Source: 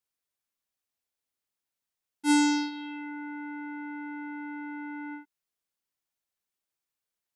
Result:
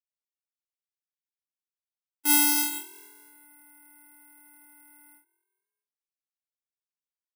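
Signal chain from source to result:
high-pass filter 120 Hz 6 dB per octave
noise gate with hold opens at −26 dBFS
spectral tilt +3.5 dB per octave
notch filter 4,200 Hz, Q 5.8
in parallel at −10 dB: wrap-around overflow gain 17 dB
on the sum: echo with shifted repeats 216 ms, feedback 46%, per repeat +42 Hz, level −23 dB
bad sample-rate conversion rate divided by 4×, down filtered, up zero stuff
level −1.5 dB

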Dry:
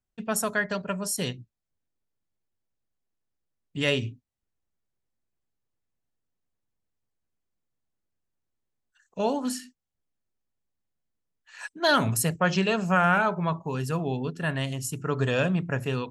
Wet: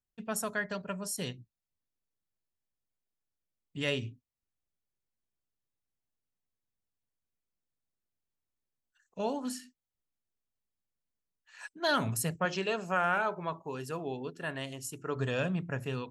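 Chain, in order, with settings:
0:12.45–0:15.16: low shelf with overshoot 250 Hz −6 dB, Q 1.5
level −7 dB

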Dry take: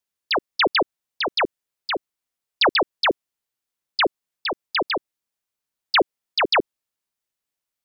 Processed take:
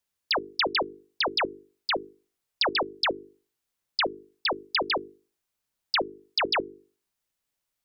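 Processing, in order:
low-shelf EQ 160 Hz +6 dB
mains-hum notches 50/100/150/200/250/300/350/400/450 Hz
downward compressor 6 to 1, threshold −26 dBFS, peak gain reduction 11 dB
level +2 dB

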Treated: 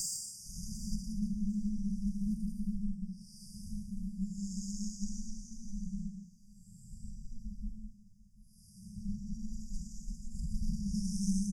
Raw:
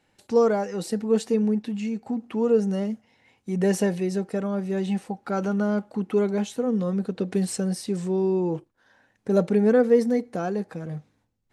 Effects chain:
extreme stretch with random phases 8×, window 0.10 s, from 0:01.22
harmonic generator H 2 −8 dB, 8 −16 dB, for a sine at −8 dBFS
linear-phase brick-wall band-stop 190–4,700 Hz
on a send: repeating echo 745 ms, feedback 29%, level −19.5 dB
on the sum: level +1.5 dB

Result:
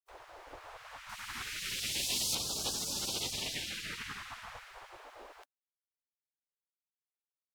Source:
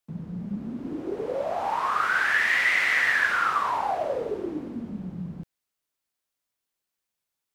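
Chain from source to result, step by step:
gate on every frequency bin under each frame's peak −30 dB weak
0:01.09–0:02.35: high-shelf EQ 4,700 Hz +9 dB
level +7.5 dB

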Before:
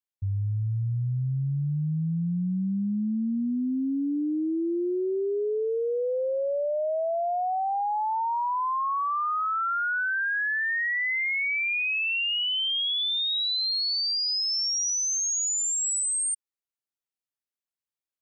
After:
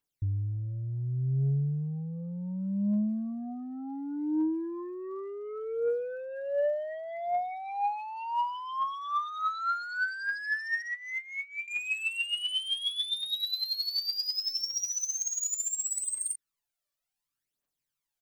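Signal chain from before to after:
0:10.82–0:11.68: Chebyshev low-pass filter 1,300 Hz, order 3
comb filter 6.9 ms, depth 59%
brickwall limiter −31.5 dBFS, peak gain reduction 11.5 dB
soft clipping −33.5 dBFS, distortion −20 dB
phase shifter 0.68 Hz, delay 1.8 ms, feedback 64%
level +2.5 dB

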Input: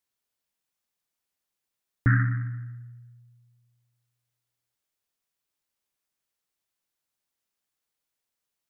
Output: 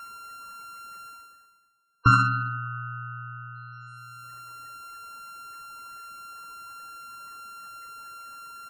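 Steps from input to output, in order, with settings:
samples sorted by size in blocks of 32 samples
gate on every frequency bin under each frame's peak −25 dB strong
reversed playback
upward compression, threshold −33 dBFS
reversed playback
flat-topped bell 1,400 Hz +11.5 dB 1.3 octaves
double-tracking delay 46 ms −10 dB
delay with a band-pass on its return 176 ms, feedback 32%, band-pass 510 Hz, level −23.5 dB
in parallel at +0.5 dB: downward compressor, threshold −41 dBFS, peak gain reduction 24.5 dB

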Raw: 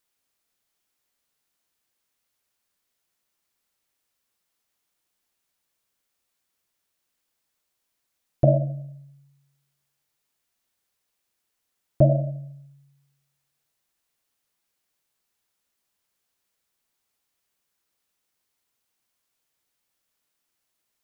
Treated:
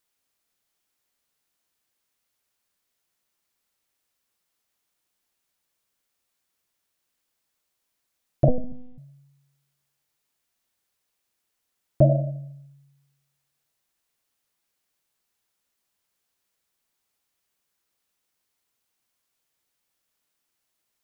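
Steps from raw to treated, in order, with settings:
0:08.48–0:08.98: one-pitch LPC vocoder at 8 kHz 250 Hz

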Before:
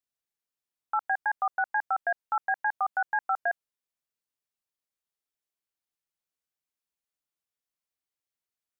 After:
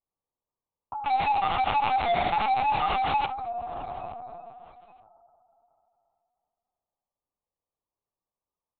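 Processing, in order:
peak hold with a decay on every bin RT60 2.57 s
Butterworth low-pass 1,200 Hz 96 dB per octave
low-shelf EQ 77 Hz −8.5 dB
downward compressor 12 to 1, threshold −36 dBFS, peak gain reduction 13 dB
0:01.06–0:03.26: log-companded quantiser 2 bits
flanger 1 Hz, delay 8.3 ms, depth 7.5 ms, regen +63%
repeating echo 869 ms, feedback 26%, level −23 dB
linear-prediction vocoder at 8 kHz pitch kept
level +9 dB

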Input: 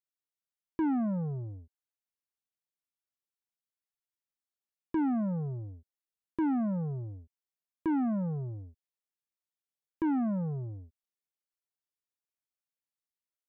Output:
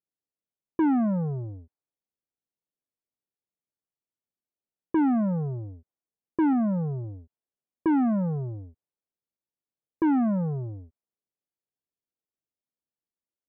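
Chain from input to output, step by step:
0:06.53–0:07.04: high-frequency loss of the air 260 metres
low-pass that shuts in the quiet parts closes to 530 Hz, open at −29.5 dBFS
low-shelf EQ 76 Hz −9.5 dB
level +7 dB

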